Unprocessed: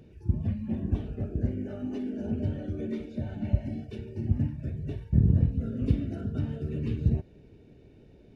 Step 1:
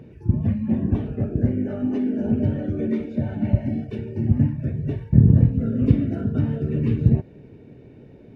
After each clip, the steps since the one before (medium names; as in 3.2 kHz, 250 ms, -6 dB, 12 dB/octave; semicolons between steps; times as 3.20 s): ten-band graphic EQ 125 Hz +10 dB, 250 Hz +8 dB, 500 Hz +7 dB, 1 kHz +8 dB, 2 kHz +8 dB; trim -1 dB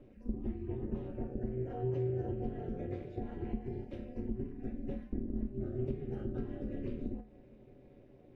compression 6:1, threshold -21 dBFS, peak gain reduction 13.5 dB; feedback comb 86 Hz, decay 0.32 s, harmonics odd, mix 80%; ring modulator 130 Hz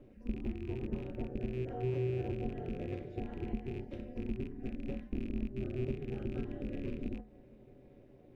rattle on loud lows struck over -40 dBFS, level -43 dBFS